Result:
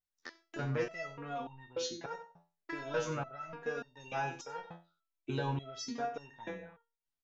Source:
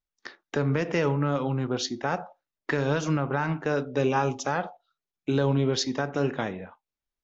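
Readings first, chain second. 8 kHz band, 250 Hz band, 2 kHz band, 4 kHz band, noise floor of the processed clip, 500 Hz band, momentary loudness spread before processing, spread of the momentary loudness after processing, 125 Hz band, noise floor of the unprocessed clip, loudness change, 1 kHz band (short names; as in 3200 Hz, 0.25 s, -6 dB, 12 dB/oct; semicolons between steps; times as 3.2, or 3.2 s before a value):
n/a, -15.5 dB, -10.5 dB, -11.0 dB, under -85 dBFS, -12.0 dB, 14 LU, 15 LU, -14.0 dB, under -85 dBFS, -12.5 dB, -9.5 dB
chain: echo 89 ms -14 dB; stepped resonator 3.4 Hz 85–920 Hz; gain +3.5 dB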